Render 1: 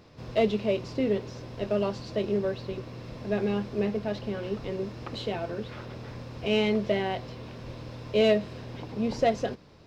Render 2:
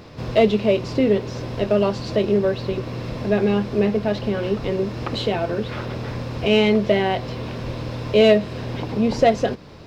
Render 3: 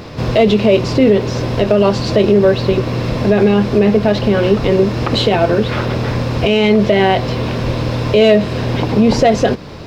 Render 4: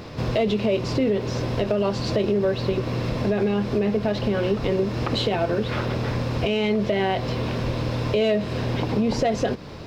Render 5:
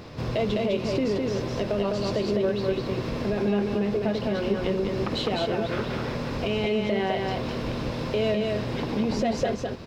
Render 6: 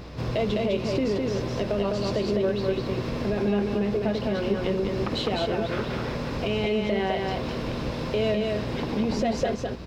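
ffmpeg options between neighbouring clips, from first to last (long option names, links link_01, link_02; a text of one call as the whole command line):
ffmpeg -i in.wav -filter_complex "[0:a]equalizer=frequency=5900:width_type=o:width=0.77:gain=-2,asplit=2[link_01][link_02];[link_02]acompressor=threshold=-36dB:ratio=6,volume=-1.5dB[link_03];[link_01][link_03]amix=inputs=2:normalize=0,volume=7dB" out.wav
ffmpeg -i in.wav -af "alimiter=level_in=12.5dB:limit=-1dB:release=50:level=0:latency=1,volume=-1.5dB" out.wav
ffmpeg -i in.wav -af "acompressor=threshold=-15dB:ratio=2,volume=-6.5dB" out.wav
ffmpeg -i in.wav -af "aecho=1:1:205:0.708,volume=-4.5dB" out.wav
ffmpeg -i in.wav -af "aeval=exprs='val(0)+0.00794*(sin(2*PI*60*n/s)+sin(2*PI*2*60*n/s)/2+sin(2*PI*3*60*n/s)/3+sin(2*PI*4*60*n/s)/4+sin(2*PI*5*60*n/s)/5)':channel_layout=same" out.wav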